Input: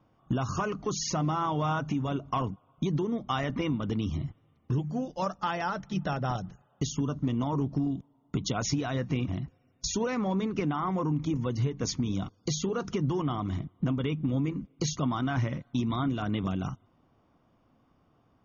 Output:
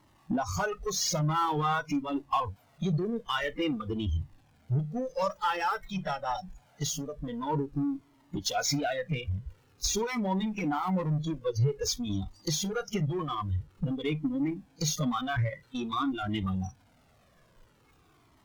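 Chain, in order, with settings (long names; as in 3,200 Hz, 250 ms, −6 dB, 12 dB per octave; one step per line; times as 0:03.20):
converter with a step at zero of −35 dBFS
noise reduction from a noise print of the clip's start 25 dB
in parallel at −5 dB: soft clipping −31.5 dBFS, distortion −10 dB
on the sum: harmonic generator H 6 −32 dB, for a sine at −17 dBFS
flanger whose copies keep moving one way falling 0.49 Hz
level +3 dB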